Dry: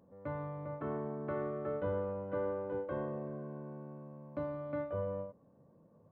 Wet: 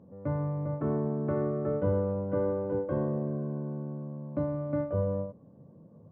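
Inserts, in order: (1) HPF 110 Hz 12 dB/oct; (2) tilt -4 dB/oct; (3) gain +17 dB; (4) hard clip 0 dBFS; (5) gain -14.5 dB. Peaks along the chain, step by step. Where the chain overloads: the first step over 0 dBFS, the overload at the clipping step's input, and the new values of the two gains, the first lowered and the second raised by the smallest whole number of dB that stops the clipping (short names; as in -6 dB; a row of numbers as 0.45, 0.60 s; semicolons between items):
-25.5, -19.0, -2.0, -2.0, -16.5 dBFS; no overload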